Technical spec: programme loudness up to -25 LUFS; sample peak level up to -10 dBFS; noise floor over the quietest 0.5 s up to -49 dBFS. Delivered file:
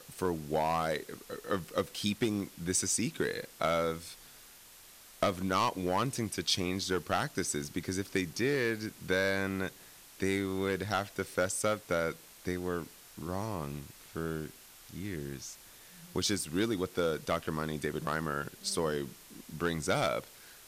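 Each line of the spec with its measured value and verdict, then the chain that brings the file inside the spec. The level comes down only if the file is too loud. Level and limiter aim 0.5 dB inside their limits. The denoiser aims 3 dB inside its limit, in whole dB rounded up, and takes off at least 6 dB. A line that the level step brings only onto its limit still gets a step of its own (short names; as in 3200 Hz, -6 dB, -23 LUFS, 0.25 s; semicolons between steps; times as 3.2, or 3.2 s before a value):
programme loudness -33.5 LUFS: OK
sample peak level -15.5 dBFS: OK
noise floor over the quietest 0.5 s -55 dBFS: OK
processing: none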